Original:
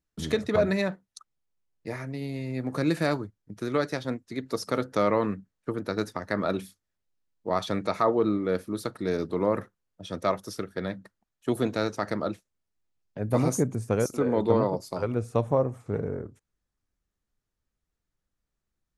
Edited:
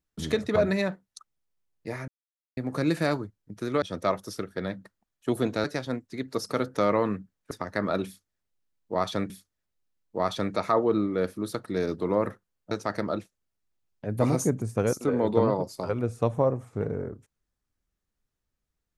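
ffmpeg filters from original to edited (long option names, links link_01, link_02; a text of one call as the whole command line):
ffmpeg -i in.wav -filter_complex "[0:a]asplit=8[link_01][link_02][link_03][link_04][link_05][link_06][link_07][link_08];[link_01]atrim=end=2.08,asetpts=PTS-STARTPTS,afade=type=out:start_time=2.076:duration=0.004:curve=hsin[link_09];[link_02]atrim=start=2.08:end=2.57,asetpts=PTS-STARTPTS,volume=0[link_10];[link_03]atrim=start=2.57:end=3.822,asetpts=PTS-STARTPTS,afade=type=in:duration=0.004:curve=hsin[link_11];[link_04]atrim=start=10.018:end=11.842[link_12];[link_05]atrim=start=3.818:end=5.692[link_13];[link_06]atrim=start=6.058:end=7.852[link_14];[link_07]atrim=start=6.608:end=10.022[link_15];[link_08]atrim=start=11.838[link_16];[link_09][link_10][link_11]concat=n=3:v=0:a=1[link_17];[link_17][link_12]acrossfade=duration=0.004:curve1=hsin:curve2=hsin[link_18];[link_18][link_13]acrossfade=duration=0.004:curve1=hsin:curve2=hsin[link_19];[link_19][link_14]acrossfade=duration=0.004:curve1=hsin:curve2=hsin[link_20];[link_20][link_15]acrossfade=duration=0.004:curve1=hsin:curve2=hsin[link_21];[link_21][link_16]acrossfade=duration=0.004:curve1=hsin:curve2=hsin" out.wav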